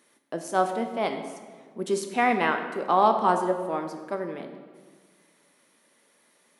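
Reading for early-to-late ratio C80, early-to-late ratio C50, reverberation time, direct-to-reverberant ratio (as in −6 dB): 9.0 dB, 8.0 dB, 1.6 s, 5.5 dB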